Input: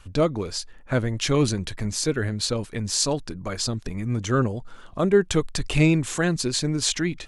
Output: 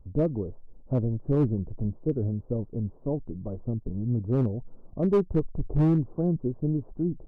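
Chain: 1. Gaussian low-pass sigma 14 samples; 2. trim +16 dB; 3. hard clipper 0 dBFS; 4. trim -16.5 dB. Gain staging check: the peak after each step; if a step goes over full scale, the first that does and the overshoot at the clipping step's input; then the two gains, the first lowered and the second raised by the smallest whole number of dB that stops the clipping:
-10.0 dBFS, +6.0 dBFS, 0.0 dBFS, -16.5 dBFS; step 2, 6.0 dB; step 2 +10 dB, step 4 -10.5 dB

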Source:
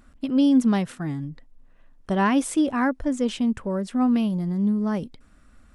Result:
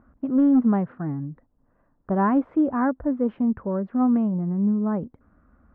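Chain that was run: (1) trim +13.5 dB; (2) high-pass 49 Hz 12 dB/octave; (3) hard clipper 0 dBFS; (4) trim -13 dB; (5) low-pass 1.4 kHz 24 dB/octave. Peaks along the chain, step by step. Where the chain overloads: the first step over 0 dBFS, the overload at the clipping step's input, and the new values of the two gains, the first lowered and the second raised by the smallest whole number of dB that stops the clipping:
+3.0 dBFS, +3.0 dBFS, 0.0 dBFS, -13.0 dBFS, -12.5 dBFS; step 1, 3.0 dB; step 1 +10.5 dB, step 4 -10 dB

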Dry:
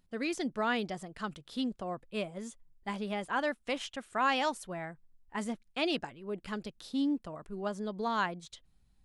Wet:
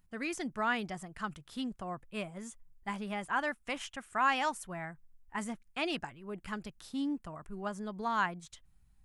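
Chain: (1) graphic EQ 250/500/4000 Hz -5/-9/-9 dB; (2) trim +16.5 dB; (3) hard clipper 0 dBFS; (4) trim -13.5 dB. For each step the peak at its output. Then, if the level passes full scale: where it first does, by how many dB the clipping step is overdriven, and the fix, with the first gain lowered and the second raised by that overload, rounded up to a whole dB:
-19.5 dBFS, -3.0 dBFS, -3.0 dBFS, -16.5 dBFS; nothing clips

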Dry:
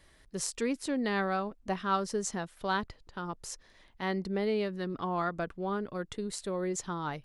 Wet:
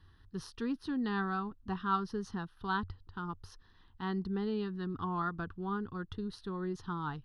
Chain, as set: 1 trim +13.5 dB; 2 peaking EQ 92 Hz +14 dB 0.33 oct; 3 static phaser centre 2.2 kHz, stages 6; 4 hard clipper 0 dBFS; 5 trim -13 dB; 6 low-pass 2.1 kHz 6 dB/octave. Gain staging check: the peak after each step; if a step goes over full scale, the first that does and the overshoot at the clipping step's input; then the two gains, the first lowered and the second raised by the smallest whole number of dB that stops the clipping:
-2.5 dBFS, -2.5 dBFS, -4.0 dBFS, -4.0 dBFS, -17.0 dBFS, -18.5 dBFS; nothing clips

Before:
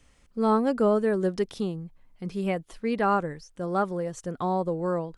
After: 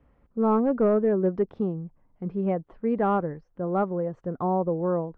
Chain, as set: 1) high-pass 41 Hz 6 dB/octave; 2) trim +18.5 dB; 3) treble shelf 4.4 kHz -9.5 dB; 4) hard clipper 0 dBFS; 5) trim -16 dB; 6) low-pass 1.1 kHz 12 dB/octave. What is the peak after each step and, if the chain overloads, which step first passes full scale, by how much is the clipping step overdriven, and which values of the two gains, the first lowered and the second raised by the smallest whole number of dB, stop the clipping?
-13.0 dBFS, +5.5 dBFS, +5.5 dBFS, 0.0 dBFS, -16.0 dBFS, -15.5 dBFS; step 2, 5.5 dB; step 2 +12.5 dB, step 5 -10 dB

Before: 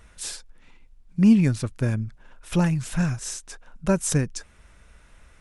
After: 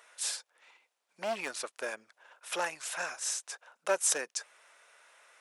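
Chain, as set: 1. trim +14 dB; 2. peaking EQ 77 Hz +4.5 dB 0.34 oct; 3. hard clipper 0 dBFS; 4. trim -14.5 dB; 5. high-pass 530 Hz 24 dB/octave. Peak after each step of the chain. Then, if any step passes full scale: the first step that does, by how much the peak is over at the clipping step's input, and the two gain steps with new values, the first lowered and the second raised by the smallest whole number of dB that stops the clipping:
+6.0 dBFS, +6.0 dBFS, 0.0 dBFS, -14.5 dBFS, -15.0 dBFS; step 1, 6.0 dB; step 1 +8 dB, step 4 -8.5 dB

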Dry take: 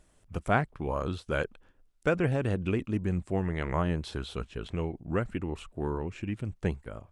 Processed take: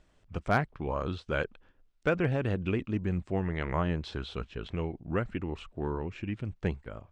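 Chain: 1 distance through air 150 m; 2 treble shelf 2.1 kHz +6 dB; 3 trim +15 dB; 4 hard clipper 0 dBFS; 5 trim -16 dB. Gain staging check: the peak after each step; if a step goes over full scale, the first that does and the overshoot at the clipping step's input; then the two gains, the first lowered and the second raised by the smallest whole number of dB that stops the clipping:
-12.5 dBFS, -10.5 dBFS, +4.5 dBFS, 0.0 dBFS, -16.0 dBFS; step 3, 4.5 dB; step 3 +10 dB, step 5 -11 dB

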